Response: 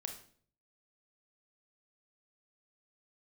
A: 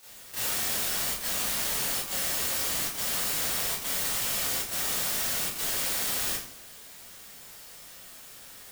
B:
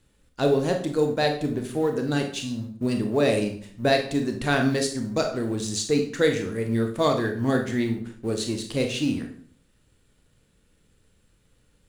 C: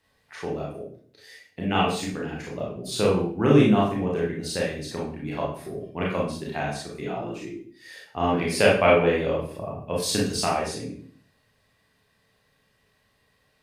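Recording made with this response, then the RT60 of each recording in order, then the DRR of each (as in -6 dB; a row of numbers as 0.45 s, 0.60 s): B; 0.50 s, 0.50 s, 0.50 s; -9.5 dB, 4.0 dB, -4.5 dB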